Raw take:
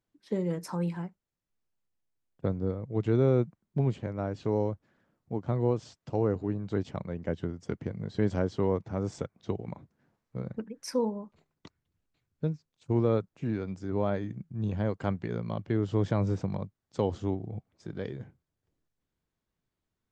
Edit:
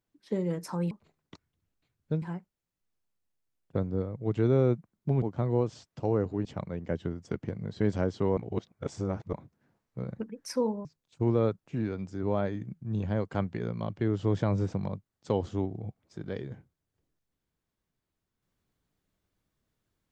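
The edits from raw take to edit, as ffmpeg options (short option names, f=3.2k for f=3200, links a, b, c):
-filter_complex "[0:a]asplit=8[a][b][c][d][e][f][g][h];[a]atrim=end=0.912[i];[b]atrim=start=11.228:end=12.542[j];[c]atrim=start=0.908:end=3.912[k];[d]atrim=start=5.318:end=6.552[l];[e]atrim=start=6.828:end=8.752[m];[f]atrim=start=8.748:end=9.712,asetpts=PTS-STARTPTS,areverse[n];[g]atrim=start=9.708:end=11.232[o];[h]atrim=start=12.538[p];[i][j]acrossfade=d=0.004:c1=hsin:c2=hsin[q];[q][k]acrossfade=d=0.004:c1=hsin:c2=hsin[r];[r][l]acrossfade=d=0.004:c1=hsin:c2=hsin[s];[s][m]acrossfade=d=0.004:c1=hsin:c2=hsin[t];[t][n]acrossfade=d=0.004:c1=hsin:c2=hsin[u];[u][o]acrossfade=d=0.004:c1=hsin:c2=hsin[v];[v][p]acrossfade=d=0.004:c1=hsin:c2=hsin"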